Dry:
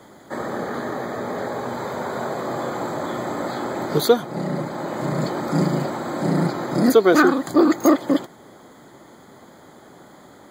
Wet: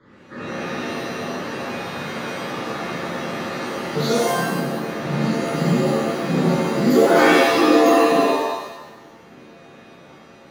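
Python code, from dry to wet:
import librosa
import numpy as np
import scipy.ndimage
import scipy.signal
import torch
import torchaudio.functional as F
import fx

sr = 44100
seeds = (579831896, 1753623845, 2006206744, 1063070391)

y = fx.fixed_phaser(x, sr, hz=2700.0, stages=6)
y = fx.env_lowpass(y, sr, base_hz=2700.0, full_db=-17.0)
y = fx.rev_shimmer(y, sr, seeds[0], rt60_s=1.0, semitones=7, shimmer_db=-2, drr_db=-6.5)
y = y * 10.0 ** (-6.5 / 20.0)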